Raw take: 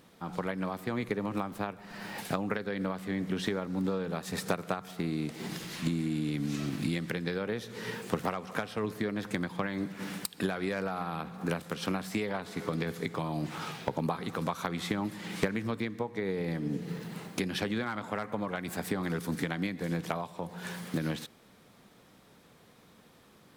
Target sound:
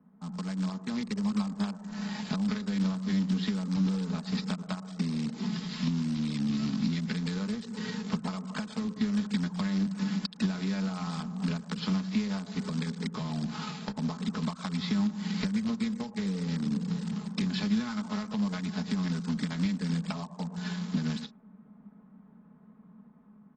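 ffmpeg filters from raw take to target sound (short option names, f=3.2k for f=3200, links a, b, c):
-filter_complex "[0:a]aecho=1:1:4.7:0.63,asplit=2[a][b];[b]adelay=110,highpass=300,lowpass=3.4k,asoftclip=type=hard:threshold=-21dB,volume=-17dB[c];[a][c]amix=inputs=2:normalize=0,dynaudnorm=f=430:g=5:m=5dB,aresample=11025,acrusher=bits=2:mode=log:mix=0:aa=0.000001,aresample=44100,acrossover=split=130[d][e];[e]acompressor=threshold=-27dB:ratio=4[f];[d][f]amix=inputs=2:normalize=0,firequalizer=gain_entry='entry(110,0);entry(200,11);entry(350,-14);entry(640,-14);entry(980,-9);entry(2400,-10)':delay=0.05:min_phase=1,acrossover=split=410|1300[g][h][i];[i]aeval=exprs='sgn(val(0))*max(abs(val(0))-0.00211,0)':c=same[j];[g][h][j]amix=inputs=3:normalize=0,bass=f=250:g=-13,treble=f=4k:g=14,volume=2dB" -ar 24000 -c:a aac -b:a 24k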